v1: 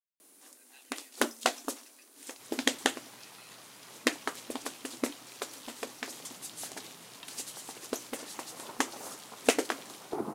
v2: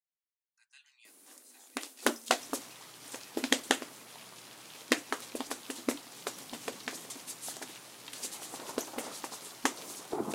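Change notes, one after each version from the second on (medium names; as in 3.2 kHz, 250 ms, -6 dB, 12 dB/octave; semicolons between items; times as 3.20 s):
first sound: entry +0.85 s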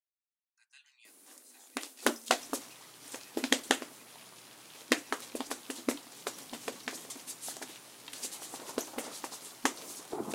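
second sound -3.0 dB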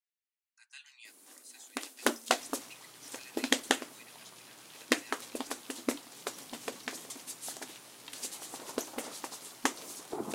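speech +8.0 dB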